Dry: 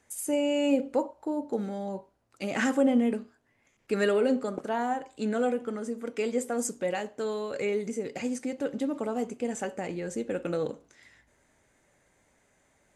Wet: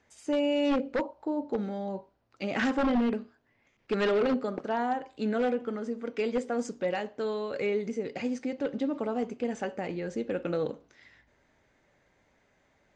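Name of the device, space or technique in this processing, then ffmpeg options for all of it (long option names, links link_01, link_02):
synthesiser wavefolder: -af "aeval=exprs='0.0944*(abs(mod(val(0)/0.0944+3,4)-2)-1)':channel_layout=same,lowpass=frequency=5300:width=0.5412,lowpass=frequency=5300:width=1.3066"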